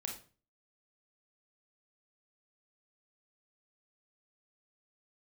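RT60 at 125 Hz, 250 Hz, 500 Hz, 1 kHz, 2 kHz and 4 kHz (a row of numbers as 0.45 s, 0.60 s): 0.55 s, 0.45 s, 0.40 s, 0.35 s, 0.35 s, 0.30 s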